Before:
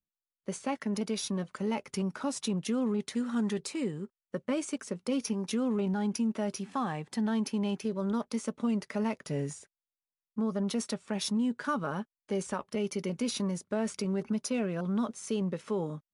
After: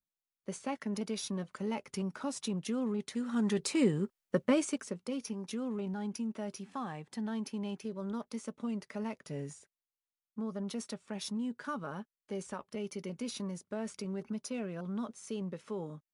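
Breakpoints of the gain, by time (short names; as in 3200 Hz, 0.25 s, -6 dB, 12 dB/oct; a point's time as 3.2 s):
3.21 s -4 dB
3.81 s +5.5 dB
4.41 s +5.5 dB
5.15 s -7 dB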